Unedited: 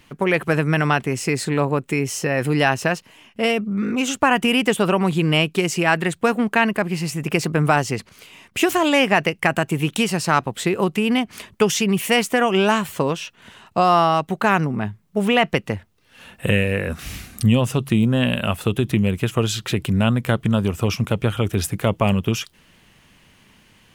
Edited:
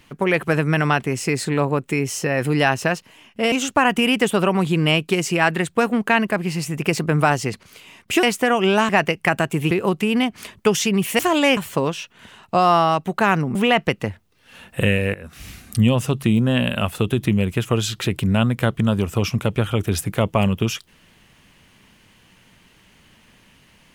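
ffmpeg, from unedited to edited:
ffmpeg -i in.wav -filter_complex "[0:a]asplit=9[link_01][link_02][link_03][link_04][link_05][link_06][link_07][link_08][link_09];[link_01]atrim=end=3.522[link_10];[link_02]atrim=start=3.978:end=8.692[link_11];[link_03]atrim=start=12.138:end=12.802[link_12];[link_04]atrim=start=9.068:end=9.892[link_13];[link_05]atrim=start=10.658:end=12.142[link_14];[link_06]atrim=start=8.688:end=9.072[link_15];[link_07]atrim=start=12.798:end=14.782[link_16];[link_08]atrim=start=15.208:end=16.8,asetpts=PTS-STARTPTS,afade=type=out:start_time=1.588:duration=0.004:curve=hsin:silence=0.149624[link_17];[link_09]atrim=start=16.8,asetpts=PTS-STARTPTS,afade=type=in:duration=0.71:silence=0.149624[link_18];[link_10][link_11]acrossfade=duration=0.004:curve1=hsin:curve2=hsin[link_19];[link_19][link_12]acrossfade=duration=0.004:curve1=hsin:curve2=hsin[link_20];[link_20][link_13]acrossfade=duration=0.004:curve1=hsin:curve2=hsin[link_21];[link_21][link_14]acrossfade=duration=0.004:curve1=hsin:curve2=hsin[link_22];[link_22][link_15]acrossfade=duration=0.004:curve1=hsin:curve2=hsin[link_23];[link_23][link_16]acrossfade=duration=0.004:curve1=hsin:curve2=hsin[link_24];[link_17][link_18]concat=n=2:v=0:a=1[link_25];[link_24][link_25]acrossfade=duration=0.004:curve1=hsin:curve2=hsin" out.wav

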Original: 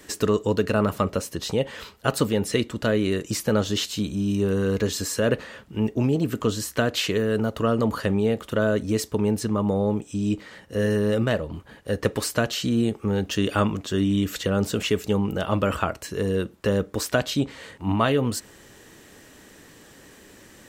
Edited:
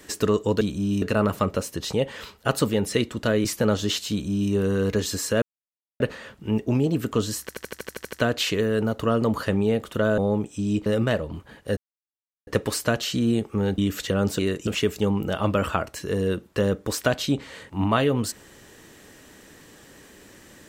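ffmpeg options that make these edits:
ffmpeg -i in.wav -filter_complex "[0:a]asplit=20[link_01][link_02][link_03][link_04][link_05][link_06][link_07][link_08][link_09][link_10][link_11][link_12][link_13][link_14][link_15][link_16][link_17][link_18][link_19][link_20];[link_01]atrim=end=0.612[link_21];[link_02]atrim=start=3.978:end=4.392[link_22];[link_03]atrim=start=0.608:end=3.042[link_23];[link_04]atrim=start=3.318:end=5.29,asetpts=PTS-STARTPTS,afade=type=out:start_time=1.968:duration=0.004:curve=hsin,apad=pad_dur=0.58[link_24];[link_05]atrim=start=5.29:end=6.782,asetpts=PTS-STARTPTS,afade=type=in:duration=0.004:curve=hsin[link_25];[link_06]atrim=start=6.698:end=6.782[link_26];[link_07]atrim=start=6.698:end=6.782[link_27];[link_08]atrim=start=6.698:end=6.782[link_28];[link_09]atrim=start=6.698:end=6.782[link_29];[link_10]atrim=start=6.698:end=6.782[link_30];[link_11]atrim=start=6.698:end=6.782[link_31];[link_12]atrim=start=6.698:end=6.782[link_32];[link_13]atrim=start=6.698:end=6.782[link_33];[link_14]atrim=start=6.698:end=8.752[link_34];[link_15]atrim=start=9.738:end=10.422[link_35];[link_16]atrim=start=11.058:end=11.97,asetpts=PTS-STARTPTS,afade=type=out:start_time=0.908:duration=0.004:curve=hsin,apad=pad_dur=0.7[link_36];[link_17]atrim=start=11.97:end=13.282,asetpts=PTS-STARTPTS,afade=type=in:duration=0.004:curve=hsin[link_37];[link_18]atrim=start=14.138:end=14.752[link_38];[link_19]atrim=start=3.038:end=3.322[link_39];[link_20]atrim=start=14.748[link_40];[link_21][link_22]acrossfade=duration=0.004:curve1=hsin:curve2=hsin[link_41];[link_41][link_23]acrossfade=duration=0.004:curve1=hsin:curve2=hsin[link_42];[link_24][link_25]concat=n=2:v=0:a=1[link_43];[link_42][link_43]acrossfade=duration=0.004:curve1=hsin:curve2=hsin[link_44];[link_44][link_26]acrossfade=duration=0.004:curve1=hsin:curve2=hsin[link_45];[link_45][link_27]acrossfade=duration=0.004:curve1=hsin:curve2=hsin[link_46];[link_46][link_28]acrossfade=duration=0.004:curve1=hsin:curve2=hsin[link_47];[link_47][link_29]acrossfade=duration=0.004:curve1=hsin:curve2=hsin[link_48];[link_48][link_30]acrossfade=duration=0.004:curve1=hsin:curve2=hsin[link_49];[link_49][link_31]acrossfade=duration=0.004:curve1=hsin:curve2=hsin[link_50];[link_50][link_32]acrossfade=duration=0.004:curve1=hsin:curve2=hsin[link_51];[link_51][link_33]acrossfade=duration=0.004:curve1=hsin:curve2=hsin[link_52];[link_52][link_34]acrossfade=duration=0.004:curve1=hsin:curve2=hsin[link_53];[link_53][link_35]acrossfade=duration=0.004:curve1=hsin:curve2=hsin[link_54];[link_36][link_37]concat=n=2:v=0:a=1[link_55];[link_54][link_55]acrossfade=duration=0.004:curve1=hsin:curve2=hsin[link_56];[link_56][link_38]acrossfade=duration=0.004:curve1=hsin:curve2=hsin[link_57];[link_57][link_39]acrossfade=duration=0.004:curve1=hsin:curve2=hsin[link_58];[link_58][link_40]acrossfade=duration=0.004:curve1=hsin:curve2=hsin" out.wav

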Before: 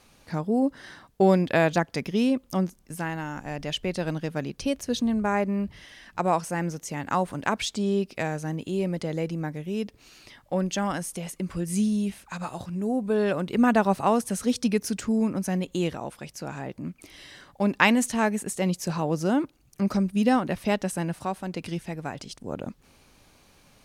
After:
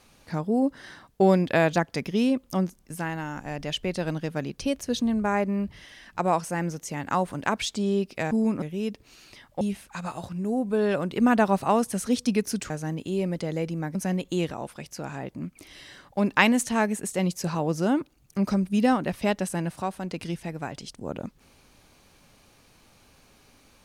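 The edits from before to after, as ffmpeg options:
ffmpeg -i in.wav -filter_complex "[0:a]asplit=6[link_01][link_02][link_03][link_04][link_05][link_06];[link_01]atrim=end=8.312[link_07];[link_02]atrim=start=15.068:end=15.382[link_08];[link_03]atrim=start=9.558:end=10.552[link_09];[link_04]atrim=start=11.978:end=15.072[link_10];[link_05]atrim=start=8.308:end=9.562[link_11];[link_06]atrim=start=15.378[link_12];[link_07][link_08]acrossfade=duration=0.004:curve1=hsin:curve2=hsin[link_13];[link_13][link_09]acrossfade=duration=0.004:curve1=hsin:curve2=hsin[link_14];[link_14][link_10]acrossfade=duration=0.004:curve1=hsin:curve2=hsin[link_15];[link_15][link_11]acrossfade=duration=0.004:curve1=hsin:curve2=hsin[link_16];[link_16][link_12]acrossfade=duration=0.004:curve1=hsin:curve2=hsin" out.wav

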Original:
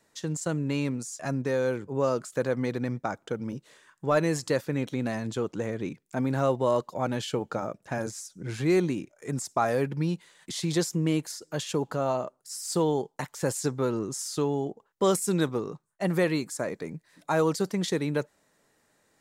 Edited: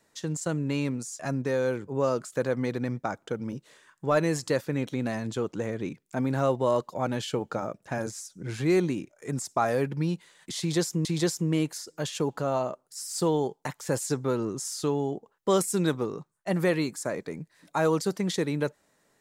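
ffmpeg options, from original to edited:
ffmpeg -i in.wav -filter_complex "[0:a]asplit=2[link_01][link_02];[link_01]atrim=end=11.052[link_03];[link_02]atrim=start=10.588[link_04];[link_03][link_04]acrossfade=duration=0.004:curve1=hsin:curve2=hsin" out.wav

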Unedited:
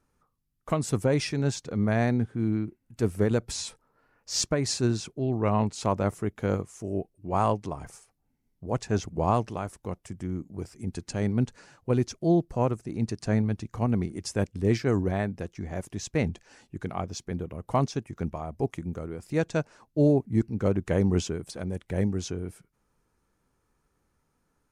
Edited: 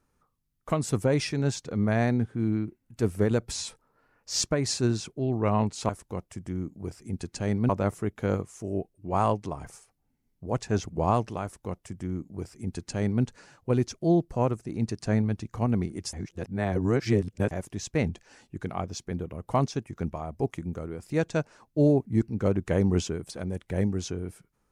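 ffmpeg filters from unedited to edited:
ffmpeg -i in.wav -filter_complex "[0:a]asplit=5[link_01][link_02][link_03][link_04][link_05];[link_01]atrim=end=5.892[link_06];[link_02]atrim=start=9.628:end=11.432[link_07];[link_03]atrim=start=5.888:end=14.332[link_08];[link_04]atrim=start=14.328:end=15.712,asetpts=PTS-STARTPTS,areverse[link_09];[link_05]atrim=start=15.708[link_10];[link_06][link_07]acrossfade=duration=0.004:curve1=hsin:curve2=hsin[link_11];[link_11][link_08]acrossfade=duration=0.004:curve1=hsin:curve2=hsin[link_12];[link_12][link_09]acrossfade=duration=0.004:curve1=hsin:curve2=hsin[link_13];[link_13][link_10]acrossfade=duration=0.004:curve1=hsin:curve2=hsin" out.wav

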